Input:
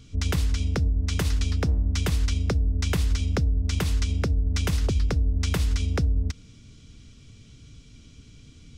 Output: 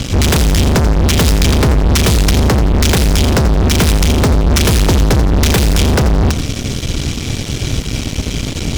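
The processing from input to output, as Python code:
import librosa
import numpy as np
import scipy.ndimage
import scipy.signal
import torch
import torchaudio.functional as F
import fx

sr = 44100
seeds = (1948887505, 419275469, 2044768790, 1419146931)

y = fx.fuzz(x, sr, gain_db=45.0, gate_db=-50.0)
y = fx.echo_feedback(y, sr, ms=86, feedback_pct=36, wet_db=-11.0)
y = F.gain(torch.from_numpy(y), 4.0).numpy()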